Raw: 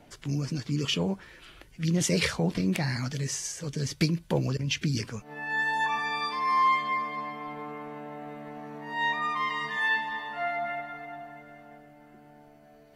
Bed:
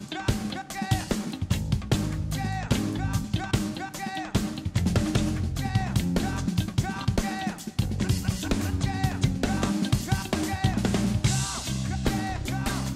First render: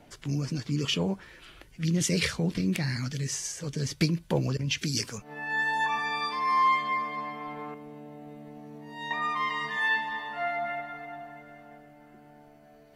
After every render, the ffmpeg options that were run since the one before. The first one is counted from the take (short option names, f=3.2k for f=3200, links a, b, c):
-filter_complex "[0:a]asettb=1/sr,asplit=3[a][b][c];[a]atrim=end=1.874[d];[b]atrim=start=1.87:end=3.32,asetpts=PTS-STARTPTS,afade=t=in:d=0.004:c=qsin,afade=t=out:st=1.446:d=0.004:c=qsin,equalizer=f=770:t=o:w=1.2:g=-8[e];[c]atrim=start=3.316[f];[d][e]acrossfade=d=0.004:c1=hsin:c2=qsin[g];[g][f]acrossfade=d=0.004:c1=qsin:c2=hsin,asettb=1/sr,asplit=3[h][i][j];[h]atrim=end=4.784[k];[i]atrim=start=4.78:end=5.18,asetpts=PTS-STARTPTS,afade=t=in:d=0.004:c=qsin,afade=t=out:st=0.396:d=0.004:c=qsin,bass=f=250:g=-5,treble=f=4k:g=10[l];[j]atrim=start=5.176[m];[k][l]acrossfade=d=0.004:c1=hsin:c2=qsin[n];[n][m]acrossfade=d=0.004:c1=qsin:c2=hsin,asettb=1/sr,asplit=3[o][p][q];[o]atrim=end=7.744[r];[p]atrim=start=7.74:end=9.11,asetpts=PTS-STARTPTS,afade=t=in:d=0.004:c=qsin,afade=t=out:st=1.366:d=0.004:c=qsin,equalizer=f=1.4k:w=0.63:g=-14.5[s];[q]atrim=start=9.106[t];[r][s]acrossfade=d=0.004:c1=hsin:c2=qsin[u];[u][t]acrossfade=d=0.004:c1=qsin:c2=hsin"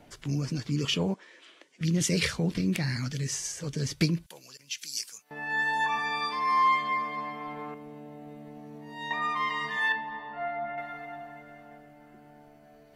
-filter_complex "[0:a]asettb=1/sr,asplit=3[a][b][c];[a]atrim=end=1.144[d];[b]atrim=start=1.14:end=1.81,asetpts=PTS-STARTPTS,afade=t=in:d=0.004:c=qsin,afade=t=out:st=0.666:d=0.004:c=qsin,highpass=f=300:w=0.5412,highpass=f=300:w=1.3066,equalizer=f=380:t=q:w=4:g=-4,equalizer=f=790:t=q:w=4:g=-6,equalizer=f=1.4k:t=q:w=4:g=-8,equalizer=f=2.6k:t=q:w=4:g=-4,equalizer=f=4.5k:t=q:w=4:g=-4,lowpass=f=8.2k:w=0.5412,lowpass=f=8.2k:w=1.3066[e];[c]atrim=start=1.806[f];[d][e]acrossfade=d=0.004:c1=hsin:c2=qsin[g];[g][f]acrossfade=d=0.004:c1=qsin:c2=hsin,asettb=1/sr,asplit=3[h][i][j];[h]atrim=end=4.264[k];[i]atrim=start=4.26:end=5.31,asetpts=PTS-STARTPTS,afade=t=in:d=0.004:c=qsin,afade=t=out:st=1.046:d=0.004:c=qsin,aderivative[l];[j]atrim=start=5.306[m];[k][l]acrossfade=d=0.004:c1=hsin:c2=qsin[n];[n][m]acrossfade=d=0.004:c1=qsin:c2=hsin,asettb=1/sr,asplit=3[o][p][q];[o]atrim=end=9.924[r];[p]atrim=start=9.92:end=10.78,asetpts=PTS-STARTPTS,afade=t=in:d=0.004:c=qsin,afade=t=out:st=0.856:d=0.004:c=qsin,lowpass=f=1k:p=1[s];[q]atrim=start=10.776[t];[r][s]acrossfade=d=0.004:c1=hsin:c2=qsin[u];[u][t]acrossfade=d=0.004:c1=qsin:c2=hsin"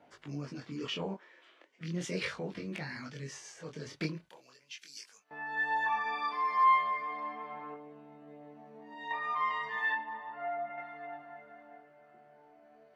-af "bandpass=f=910:t=q:w=0.56:csg=0,flanger=delay=19.5:depth=6.1:speed=0.37"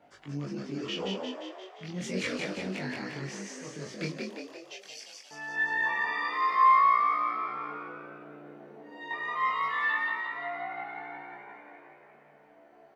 -filter_complex "[0:a]asplit=2[a][b];[b]adelay=21,volume=-4dB[c];[a][c]amix=inputs=2:normalize=0,asplit=9[d][e][f][g][h][i][j][k][l];[e]adelay=175,afreqshift=60,volume=-3dB[m];[f]adelay=350,afreqshift=120,volume=-7.7dB[n];[g]adelay=525,afreqshift=180,volume=-12.5dB[o];[h]adelay=700,afreqshift=240,volume=-17.2dB[p];[i]adelay=875,afreqshift=300,volume=-21.9dB[q];[j]adelay=1050,afreqshift=360,volume=-26.7dB[r];[k]adelay=1225,afreqshift=420,volume=-31.4dB[s];[l]adelay=1400,afreqshift=480,volume=-36.1dB[t];[d][m][n][o][p][q][r][s][t]amix=inputs=9:normalize=0"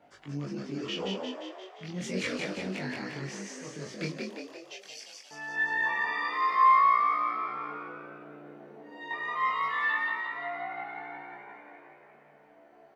-af anull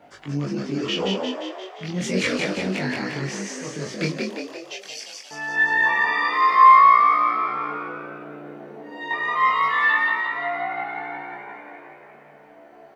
-af "volume=9.5dB"